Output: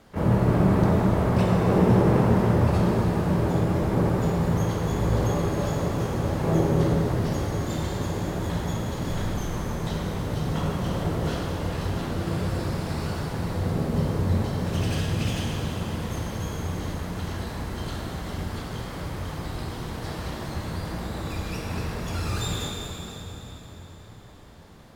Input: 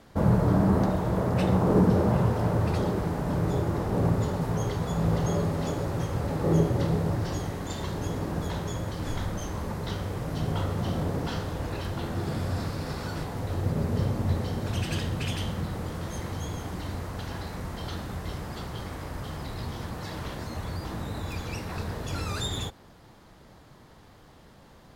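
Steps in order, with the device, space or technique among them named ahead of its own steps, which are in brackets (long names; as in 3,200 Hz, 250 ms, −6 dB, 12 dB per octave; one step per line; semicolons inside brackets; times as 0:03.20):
shimmer-style reverb (pitch-shifted copies added +12 semitones −10 dB; convolution reverb RT60 4.0 s, pre-delay 11 ms, DRR −1 dB)
level −1.5 dB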